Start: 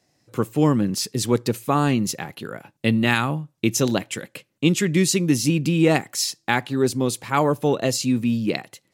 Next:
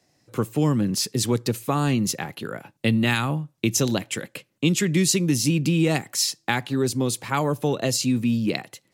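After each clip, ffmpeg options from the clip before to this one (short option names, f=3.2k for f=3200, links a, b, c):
-filter_complex "[0:a]acrossover=split=170|3000[a][b][c];[b]acompressor=threshold=-23dB:ratio=3[d];[a][d][c]amix=inputs=3:normalize=0,volume=1dB"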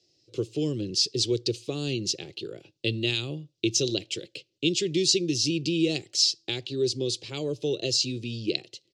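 -af "firequalizer=gain_entry='entry(110,0);entry(230,-10);entry(350,9);entry(890,-18);entry(1800,-13);entry(2800,7);entry(4700,12);entry(13000,-26)':delay=0.05:min_phase=1,volume=-7dB"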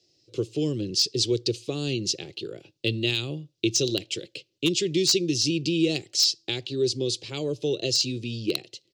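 -af "aeval=exprs='0.2*(abs(mod(val(0)/0.2+3,4)-2)-1)':c=same,volume=1.5dB"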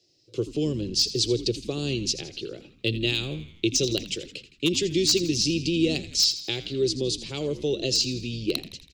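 -filter_complex "[0:a]asplit=7[a][b][c][d][e][f][g];[b]adelay=82,afreqshift=-76,volume=-14dB[h];[c]adelay=164,afreqshift=-152,volume=-19.2dB[i];[d]adelay=246,afreqshift=-228,volume=-24.4dB[j];[e]adelay=328,afreqshift=-304,volume=-29.6dB[k];[f]adelay=410,afreqshift=-380,volume=-34.8dB[l];[g]adelay=492,afreqshift=-456,volume=-40dB[m];[a][h][i][j][k][l][m]amix=inputs=7:normalize=0"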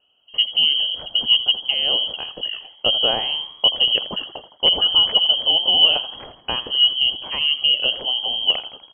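-af "lowpass=f=2.8k:t=q:w=0.5098,lowpass=f=2.8k:t=q:w=0.6013,lowpass=f=2.8k:t=q:w=0.9,lowpass=f=2.8k:t=q:w=2.563,afreqshift=-3300,volume=8.5dB"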